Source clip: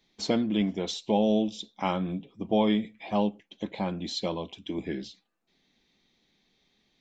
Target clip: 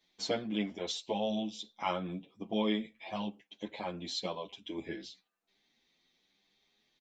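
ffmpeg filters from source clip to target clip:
-filter_complex "[0:a]lowshelf=f=340:g=-9.5,asplit=2[a][b];[b]adelay=8.9,afreqshift=0.99[c];[a][c]amix=inputs=2:normalize=1"

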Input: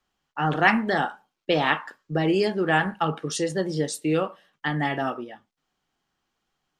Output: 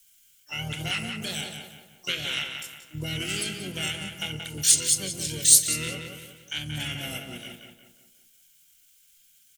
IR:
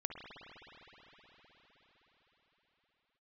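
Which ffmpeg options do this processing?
-filter_complex "[0:a]firequalizer=gain_entry='entry(110,0);entry(180,-3);entry(320,-12);entry(590,-9);entry(930,-18);entry(1400,-27);entry(2800,14);entry(6000,8);entry(10000,-1)':delay=0.05:min_phase=1,acompressor=threshold=-37dB:ratio=2,atempo=0.71,aexciter=amount=15.4:drive=10:freq=7.9k,asplit=4[a][b][c][d];[b]asetrate=22050,aresample=44100,atempo=2,volume=-11dB[e];[c]asetrate=33038,aresample=44100,atempo=1.33484,volume=-6dB[f];[d]asetrate=88200,aresample=44100,atempo=0.5,volume=-16dB[g];[a][e][f][g]amix=inputs=4:normalize=0,asplit=2[h][i];[i]adelay=179,lowpass=f=3.3k:p=1,volume=-5dB,asplit=2[j][k];[k]adelay=179,lowpass=f=3.3k:p=1,volume=0.44,asplit=2[l][m];[m]adelay=179,lowpass=f=3.3k:p=1,volume=0.44,asplit=2[n][o];[o]adelay=179,lowpass=f=3.3k:p=1,volume=0.44,asplit=2[p][q];[q]adelay=179,lowpass=f=3.3k:p=1,volume=0.44[r];[j][l][n][p][r]amix=inputs=5:normalize=0[s];[h][s]amix=inputs=2:normalize=0"

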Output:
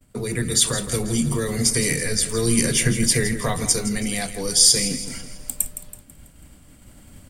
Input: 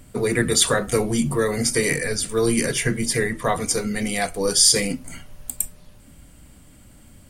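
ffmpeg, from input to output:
-filter_complex "[0:a]acrossover=split=230|3000[a][b][c];[b]acompressor=threshold=-37dB:ratio=2[d];[a][d][c]amix=inputs=3:normalize=0,asplit=2[e][f];[f]aecho=0:1:164|328|492|656|820:0.251|0.121|0.0579|0.0278|0.0133[g];[e][g]amix=inputs=2:normalize=0,dynaudnorm=f=280:g=7:m=6.5dB,agate=range=-33dB:threshold=-39dB:ratio=3:detection=peak"

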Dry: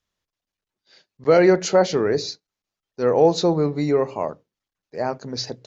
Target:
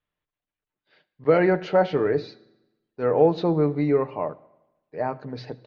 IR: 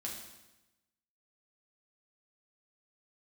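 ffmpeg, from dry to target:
-filter_complex "[0:a]lowpass=f=3.1k:w=0.5412,lowpass=f=3.1k:w=1.3066,aecho=1:1:6.7:0.36,asplit=2[a][b];[1:a]atrim=start_sample=2205,adelay=78[c];[b][c]afir=irnorm=-1:irlink=0,volume=-20.5dB[d];[a][d]amix=inputs=2:normalize=0,volume=-3dB"

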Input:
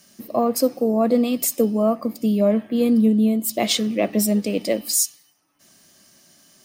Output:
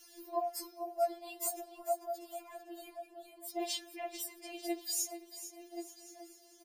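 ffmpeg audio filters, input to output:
-filter_complex "[0:a]asettb=1/sr,asplit=3[a][b][c];[a]atrim=end=1.804[d];[b]atrim=start=1.8:end=2.22,asetpts=PTS-STARTPTS,afade=t=in:d=0.004:c=qsin,afade=t=out:st=0.416:d=0.004:c=qsin,highpass=490[e];[c]atrim=start=2.216[f];[d][e]acrossfade=d=0.004:c1=hsin:c2=qsin[g];[g][f]acrossfade=d=0.004:c1=qsin:c2=hsin,asplit=2[h][i];[i]adelay=1080,lowpass=f=840:p=1,volume=-9.5dB,asplit=2[j][k];[k]adelay=1080,lowpass=f=840:p=1,volume=0.47,asplit=2[l][m];[m]adelay=1080,lowpass=f=840:p=1,volume=0.47,asplit=2[n][o];[o]adelay=1080,lowpass=f=840:p=1,volume=0.47,asplit=2[p][q];[q]adelay=1080,lowpass=f=840:p=1,volume=0.47[r];[j][l][n][p][r]amix=inputs=5:normalize=0[s];[h][s]amix=inputs=2:normalize=0,acompressor=threshold=-55dB:ratio=1.5,asettb=1/sr,asplit=3[t][u][v];[t]atrim=end=2.954[w];[u]atrim=start=2.95:end=3.61,asetpts=PTS-STARTPTS,afade=t=in:d=0.004:c=qsin,afade=t=out:st=0.656:d=0.004:c=qsin,highshelf=f=4k:g=-7[x];[v]atrim=start=3.606[y];[w][x]acrossfade=d=0.004:c1=hsin:c2=qsin[z];[z][y]acrossfade=d=0.004:c1=qsin:c2=hsin,asplit=2[aa][ab];[ab]aecho=0:1:445|890|1335|1780:0.251|0.105|0.0443|0.0186[ac];[aa][ac]amix=inputs=2:normalize=0,afftfilt=real='re*4*eq(mod(b,16),0)':imag='im*4*eq(mod(b,16),0)':win_size=2048:overlap=0.75"

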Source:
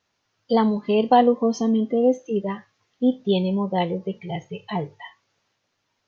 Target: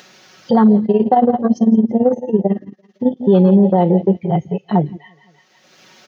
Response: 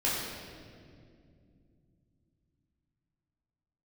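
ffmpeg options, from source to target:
-filter_complex "[0:a]highpass=f=140:w=0.5412,highpass=f=140:w=1.3066,equalizer=f=1k:w=4.6:g=-7.5,aecho=1:1:5.4:0.56,aecho=1:1:171|342|513:0.158|0.0555|0.0194,afwtdn=0.0501,asettb=1/sr,asplit=3[a][b][c];[a]atrim=end=0.854[d];[b]atrim=start=0.85:end=3.17,asetpts=PTS-STARTPTS,afade=t=in:d=0.004:c=qsin,afade=t=out:st=2.316:d=0.004:c=qsin,tremolo=f=18:d=0.83[e];[c]atrim=start=3.166[f];[d][e]acrossfade=d=0.004:c1=hsin:c2=qsin[g];[g][f]acrossfade=d=0.004:c1=qsin:c2=hsin,acompressor=mode=upward:threshold=-33dB:ratio=2.5,alimiter=level_in=14.5dB:limit=-1dB:release=50:level=0:latency=1,volume=-3dB"

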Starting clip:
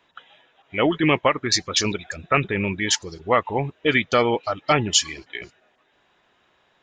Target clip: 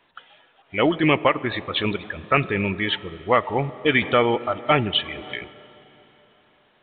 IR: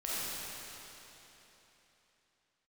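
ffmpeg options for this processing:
-filter_complex "[0:a]asplit=2[a][b];[b]equalizer=f=500:w=0.35:g=6.5[c];[1:a]atrim=start_sample=2205[d];[c][d]afir=irnorm=-1:irlink=0,volume=-26dB[e];[a][e]amix=inputs=2:normalize=0,asettb=1/sr,asplit=3[f][g][h];[f]atrim=end=4.024[i];[g]atrim=start=4.02:end=5.35,asetpts=PTS-STARTPTS,afade=t=in:d=0.004:c=qsin,afade=t=out:st=1.326:d=0.004:c=qsin,acompressor=mode=upward:threshold=-23dB:ratio=2.5[j];[h]atrim=start=5.346[k];[i][j]acrossfade=d=0.004:c1=hsin:c2=qsin[l];[l][k]acrossfade=d=0.004:c1=qsin:c2=hsin" -ar 8000 -c:a pcm_mulaw

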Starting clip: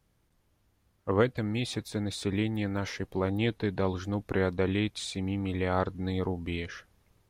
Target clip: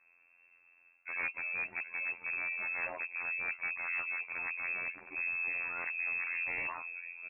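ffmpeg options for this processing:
-filter_complex "[0:a]bandreject=f=880:w=15,asplit=2[a][b];[b]adelay=762,lowpass=f=1.3k:p=1,volume=-19.5dB,asplit=2[c][d];[d]adelay=762,lowpass=f=1.3k:p=1,volume=0.33,asplit=2[e][f];[f]adelay=762,lowpass=f=1.3k:p=1,volume=0.33[g];[a][c][e][g]amix=inputs=4:normalize=0,areverse,acompressor=threshold=-35dB:ratio=12,areverse,afftfilt=real='hypot(re,im)*cos(PI*b)':imag='0':win_size=2048:overlap=0.75,aresample=8000,aeval=exprs='0.0158*(abs(mod(val(0)/0.0158+3,4)-2)-1)':c=same,aresample=44100,lowpass=f=2.3k:t=q:w=0.5098,lowpass=f=2.3k:t=q:w=0.6013,lowpass=f=2.3k:t=q:w=0.9,lowpass=f=2.3k:t=q:w=2.563,afreqshift=-2700,volume=8.5dB"

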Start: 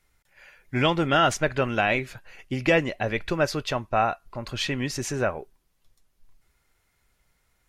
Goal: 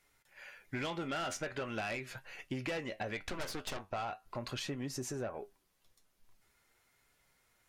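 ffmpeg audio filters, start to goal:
-filter_complex "[0:a]asettb=1/sr,asplit=3[a][b][c];[a]atrim=end=4.594[d];[b]atrim=start=4.59:end=5.34,asetpts=PTS-STARTPTS,afade=t=in:d=0.004:c=qsin,afade=t=out:st=0.746:d=0.004:c=qsin,equalizer=f=2.6k:t=o:w=2.2:g=-10[e];[c]atrim=start=5.336[f];[d][e]acrossfade=d=0.004:c1=hsin:c2=qsin[g];[g][f]acrossfade=d=0.004:c1=qsin:c2=hsin,flanger=delay=6.8:depth=5:regen=65:speed=0.42:shape=triangular,lowshelf=f=120:g=-12,asettb=1/sr,asplit=3[h][i][j];[h]atrim=end=3.214[k];[i]atrim=start=3.21:end=3.87,asetpts=PTS-STARTPTS,afade=t=in:d=0.004:c=qsin,afade=t=out:st=0.656:d=0.004:c=qsin,aeval=exprs='0.2*(cos(1*acos(clip(val(0)/0.2,-1,1)))-cos(1*PI/2))+0.0501*(cos(8*acos(clip(val(0)/0.2,-1,1)))-cos(8*PI/2))':c=same[l];[j]atrim=start=3.866[m];[k][l]acrossfade=d=0.004:c1=hsin:c2=qsin[n];[n][m]acrossfade=d=0.004:c1=qsin:c2=hsin,asoftclip=type=tanh:threshold=-25.5dB,acompressor=threshold=-40dB:ratio=6,volume=3.5dB"

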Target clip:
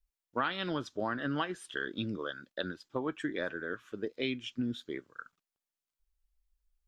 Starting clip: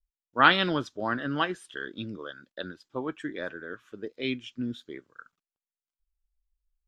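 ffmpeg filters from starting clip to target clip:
-af "acompressor=threshold=-31dB:ratio=10,volume=2dB"

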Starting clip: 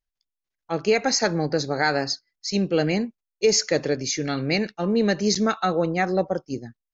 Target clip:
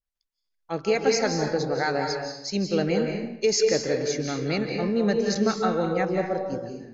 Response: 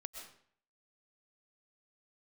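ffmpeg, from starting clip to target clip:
-filter_complex "[1:a]atrim=start_sample=2205,asetrate=31752,aresample=44100[a];[0:a][a]afir=irnorm=-1:irlink=0,adynamicequalizer=threshold=0.01:dfrequency=1500:dqfactor=0.7:tfrequency=1500:tqfactor=0.7:attack=5:release=100:ratio=0.375:range=2:mode=cutabove:tftype=highshelf"

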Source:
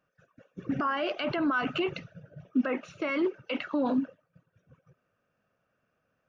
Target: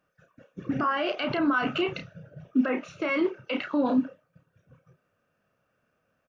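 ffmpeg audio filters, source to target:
-filter_complex "[0:a]asplit=2[a][b];[b]adelay=31,volume=-7dB[c];[a][c]amix=inputs=2:normalize=0,volume=2dB"

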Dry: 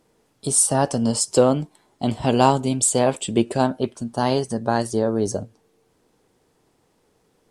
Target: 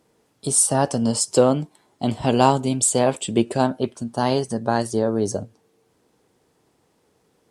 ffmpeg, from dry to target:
-af "highpass=54"

